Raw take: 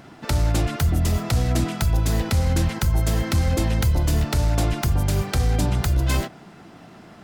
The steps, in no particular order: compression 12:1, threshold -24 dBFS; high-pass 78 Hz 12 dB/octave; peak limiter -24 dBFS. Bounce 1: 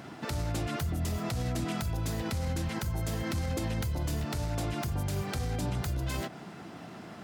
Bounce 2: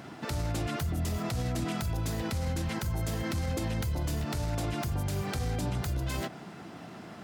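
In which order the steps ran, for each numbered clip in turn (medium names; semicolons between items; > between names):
compression > high-pass > peak limiter; high-pass > compression > peak limiter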